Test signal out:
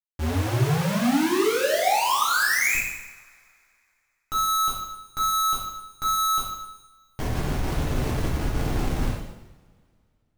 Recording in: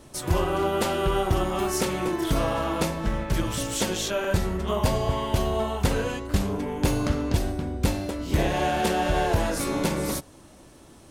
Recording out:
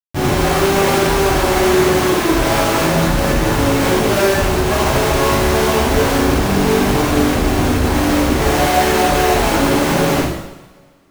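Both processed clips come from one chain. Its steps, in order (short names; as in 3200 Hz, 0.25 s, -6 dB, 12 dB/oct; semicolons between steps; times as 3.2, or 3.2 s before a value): Chebyshev low-pass 2100 Hz, order 4; Schmitt trigger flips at -39.5 dBFS; two-slope reverb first 0.88 s, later 2.6 s, from -24 dB, DRR -8 dB; gain +3.5 dB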